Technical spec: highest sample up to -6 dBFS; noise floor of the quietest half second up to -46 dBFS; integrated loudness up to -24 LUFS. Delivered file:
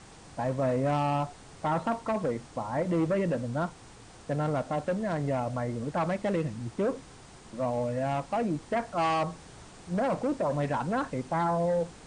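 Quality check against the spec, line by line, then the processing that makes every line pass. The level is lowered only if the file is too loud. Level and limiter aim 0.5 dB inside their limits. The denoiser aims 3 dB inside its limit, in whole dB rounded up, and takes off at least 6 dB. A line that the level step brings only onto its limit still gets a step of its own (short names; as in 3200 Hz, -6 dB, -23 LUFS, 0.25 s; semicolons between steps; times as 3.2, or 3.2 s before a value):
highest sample -16.0 dBFS: OK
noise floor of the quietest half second -50 dBFS: OK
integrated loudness -30.5 LUFS: OK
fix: none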